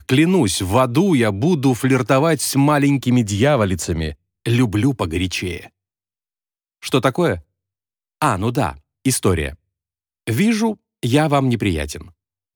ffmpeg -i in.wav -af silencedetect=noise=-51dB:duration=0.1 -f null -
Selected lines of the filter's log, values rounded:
silence_start: 4.15
silence_end: 4.46 | silence_duration: 0.31
silence_start: 5.69
silence_end: 6.82 | silence_duration: 1.13
silence_start: 7.43
silence_end: 8.21 | silence_duration: 0.79
silence_start: 8.80
silence_end: 9.05 | silence_duration: 0.25
silence_start: 9.55
silence_end: 10.27 | silence_duration: 0.72
silence_start: 10.77
silence_end: 11.03 | silence_duration: 0.26
silence_start: 12.12
silence_end: 12.56 | silence_duration: 0.44